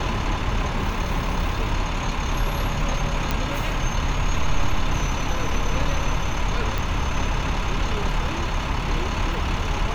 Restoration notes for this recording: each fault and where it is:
3.31 s: pop -8 dBFS
6.78 s: pop

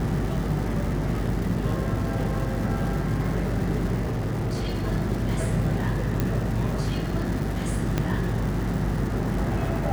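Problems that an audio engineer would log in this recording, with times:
buzz 50 Hz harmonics 9 -30 dBFS
crackle 480 per s -33 dBFS
4.01–4.85 s: clipped -23 dBFS
6.20 s: pop -11 dBFS
7.98 s: pop -10 dBFS

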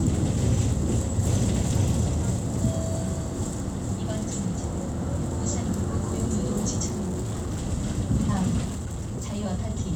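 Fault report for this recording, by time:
6.86–7.60 s: clipped -26 dBFS
8.64–9.36 s: clipped -27 dBFS

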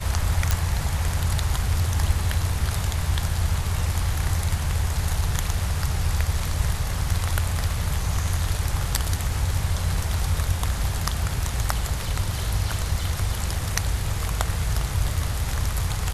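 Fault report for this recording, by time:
0.51 s: pop

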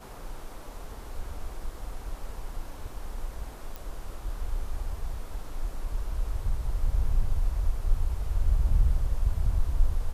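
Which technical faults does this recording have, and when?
3.76 s: pop

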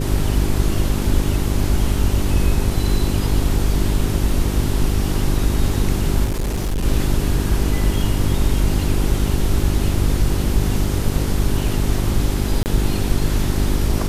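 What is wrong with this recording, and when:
hum 50 Hz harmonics 8 -22 dBFS
6.24–6.85 s: clipped -17.5 dBFS
12.63–12.66 s: dropout 29 ms

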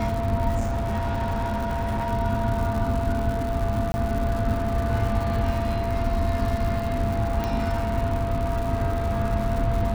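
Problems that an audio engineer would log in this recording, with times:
crackle 210 per s -30 dBFS
whine 680 Hz -28 dBFS
0.59–2.13 s: clipped -22 dBFS
3.92–3.94 s: dropout 20 ms
7.44 s: pop -14 dBFS

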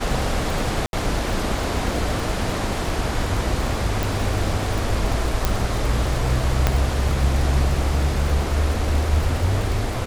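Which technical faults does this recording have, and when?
crackle 84 per s -26 dBFS
0.86–0.93 s: dropout 71 ms
4.03 s: pop
5.45 s: pop
6.67 s: pop -3 dBFS

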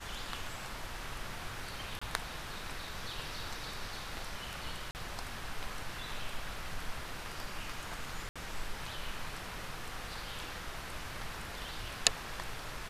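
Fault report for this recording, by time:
1.99–2.02 s: dropout 25 ms
4.91–4.95 s: dropout 39 ms
8.29–8.36 s: dropout 66 ms

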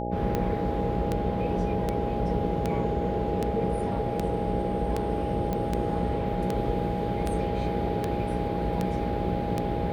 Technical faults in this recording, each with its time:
buzz 60 Hz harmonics 11 -32 dBFS
tick 78 rpm -14 dBFS
whine 820 Hz -33 dBFS
5.53 s: pop -17 dBFS

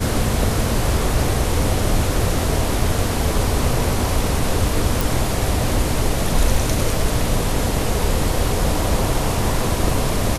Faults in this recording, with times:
5.01 s: pop

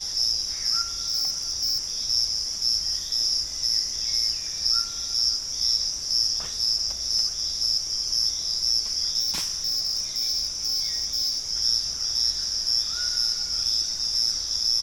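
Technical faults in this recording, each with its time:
1.05–1.93 s: clipped -21 dBFS
9.19–11.40 s: clipped -21.5 dBFS

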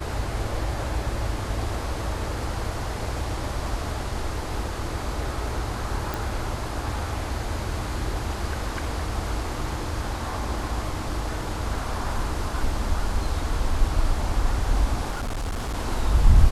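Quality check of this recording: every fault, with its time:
6.14 s: pop
15.10–15.77 s: clipped -25 dBFS

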